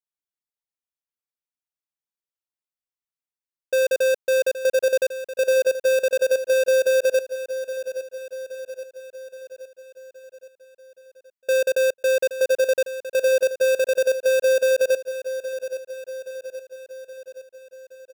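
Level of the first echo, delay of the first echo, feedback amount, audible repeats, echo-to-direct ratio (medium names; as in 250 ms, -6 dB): -12.0 dB, 822 ms, 56%, 5, -10.5 dB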